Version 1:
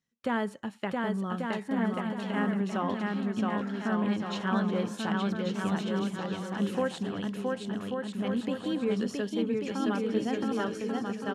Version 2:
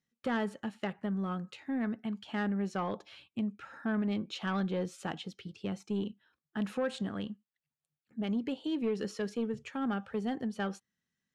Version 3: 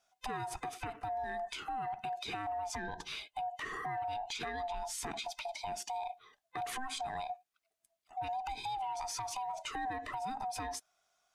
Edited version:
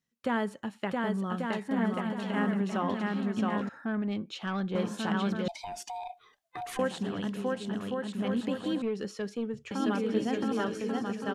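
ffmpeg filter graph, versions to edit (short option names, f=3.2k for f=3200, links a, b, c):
-filter_complex "[1:a]asplit=2[a][b];[0:a]asplit=4[c][d][e][f];[c]atrim=end=3.692[g];[a]atrim=start=3.688:end=4.752[h];[d]atrim=start=4.748:end=5.482[i];[2:a]atrim=start=5.478:end=6.792[j];[e]atrim=start=6.788:end=8.822[k];[b]atrim=start=8.818:end=9.712[l];[f]atrim=start=9.708[m];[g][h]acrossfade=d=0.004:c1=hsin:c2=hsin[n];[n][i]acrossfade=d=0.004:c1=hsin:c2=hsin[o];[o][j]acrossfade=d=0.004:c1=hsin:c2=hsin[p];[p][k]acrossfade=d=0.004:c1=hsin:c2=hsin[q];[q][l]acrossfade=d=0.004:c1=hsin:c2=hsin[r];[r][m]acrossfade=d=0.004:c1=hsin:c2=hsin"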